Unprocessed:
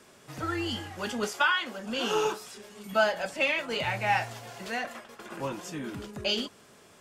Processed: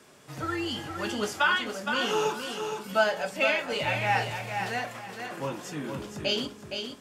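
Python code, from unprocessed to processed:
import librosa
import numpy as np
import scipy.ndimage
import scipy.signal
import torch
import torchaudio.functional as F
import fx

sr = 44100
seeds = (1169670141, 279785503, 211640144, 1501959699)

y = scipy.signal.sosfilt(scipy.signal.butter(2, 51.0, 'highpass', fs=sr, output='sos'), x)
y = fx.echo_feedback(y, sr, ms=466, feedback_pct=25, wet_db=-6.5)
y = fx.room_shoebox(y, sr, seeds[0], volume_m3=120.0, walls='furnished', distance_m=0.42)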